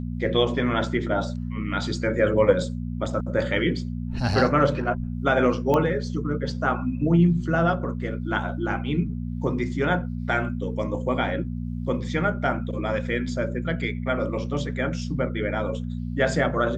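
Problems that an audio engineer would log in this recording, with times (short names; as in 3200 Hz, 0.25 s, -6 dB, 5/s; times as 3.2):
hum 60 Hz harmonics 4 -30 dBFS
5.74 pop -12 dBFS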